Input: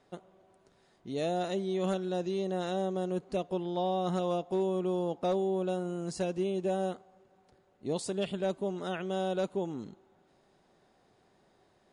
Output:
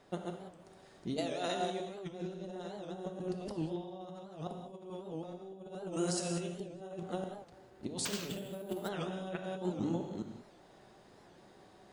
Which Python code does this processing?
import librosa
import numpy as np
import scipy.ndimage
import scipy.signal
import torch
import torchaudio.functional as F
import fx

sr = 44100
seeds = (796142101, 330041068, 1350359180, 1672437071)

y = fx.reverse_delay(x, sr, ms=213, wet_db=-2.0)
y = fx.highpass(y, sr, hz=690.0, slope=6, at=(1.17, 1.8))
y = fx.tilt_eq(y, sr, slope=2.5, at=(5.92, 6.47), fade=0.02)
y = fx.over_compress(y, sr, threshold_db=-37.0, ratio=-0.5)
y = fx.rev_gated(y, sr, seeds[0], gate_ms=220, shape='flat', drr_db=4.0)
y = fx.resample_bad(y, sr, factor=4, down='none', up='hold', at=(8.05, 8.89))
y = fx.record_warp(y, sr, rpm=78.0, depth_cents=160.0)
y = y * 10.0 ** (-3.0 / 20.0)